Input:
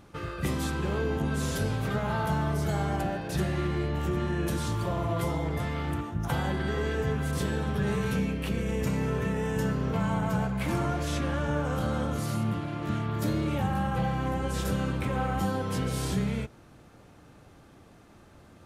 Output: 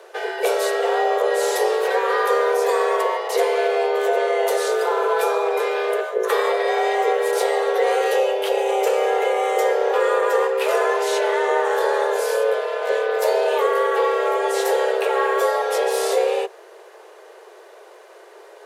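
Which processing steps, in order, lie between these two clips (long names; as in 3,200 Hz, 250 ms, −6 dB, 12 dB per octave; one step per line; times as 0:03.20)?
frequency shifter +330 Hz
level +9 dB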